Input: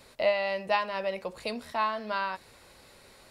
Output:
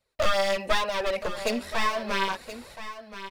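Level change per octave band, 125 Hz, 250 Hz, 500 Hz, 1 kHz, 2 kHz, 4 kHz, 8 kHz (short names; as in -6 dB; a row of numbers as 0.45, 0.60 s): n/a, +6.0 dB, +2.0 dB, +2.0 dB, +4.0 dB, +8.0 dB, +15.5 dB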